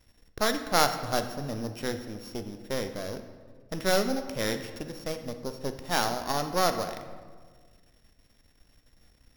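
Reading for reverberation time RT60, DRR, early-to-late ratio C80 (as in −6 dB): 1.6 s, 7.5 dB, 11.0 dB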